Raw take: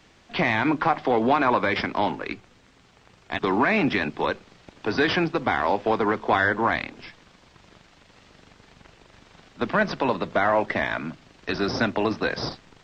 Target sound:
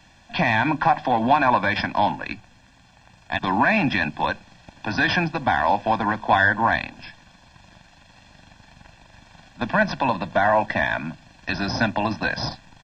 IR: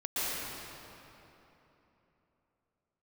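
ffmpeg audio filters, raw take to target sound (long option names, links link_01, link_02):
-af "aecho=1:1:1.2:0.87"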